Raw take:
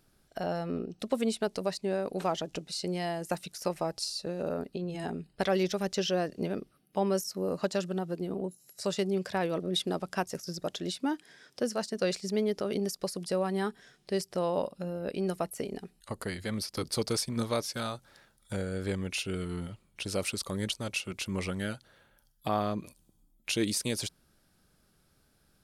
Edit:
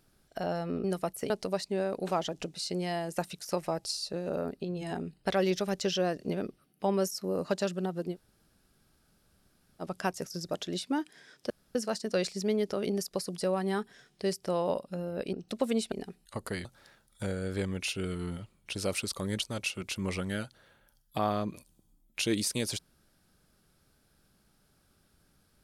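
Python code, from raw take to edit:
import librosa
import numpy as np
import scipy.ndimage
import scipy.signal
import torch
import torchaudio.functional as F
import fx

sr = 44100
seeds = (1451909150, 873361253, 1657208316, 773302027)

y = fx.edit(x, sr, fx.swap(start_s=0.84, length_s=0.59, other_s=15.21, other_length_s=0.46),
    fx.room_tone_fill(start_s=8.27, length_s=1.68, crossfade_s=0.06),
    fx.insert_room_tone(at_s=11.63, length_s=0.25),
    fx.cut(start_s=16.4, length_s=1.55), tone=tone)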